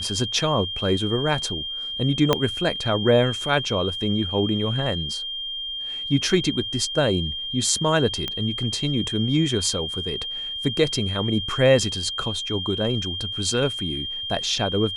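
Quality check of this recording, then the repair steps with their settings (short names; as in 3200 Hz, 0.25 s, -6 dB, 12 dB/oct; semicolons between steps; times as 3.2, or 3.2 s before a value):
tone 3200 Hz -28 dBFS
2.33 pop -4 dBFS
8.28 pop -13 dBFS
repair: de-click; notch 3200 Hz, Q 30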